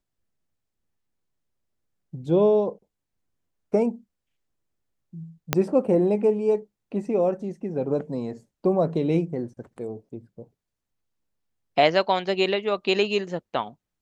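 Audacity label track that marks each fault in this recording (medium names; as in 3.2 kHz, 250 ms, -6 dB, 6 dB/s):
5.530000	5.530000	pop -4 dBFS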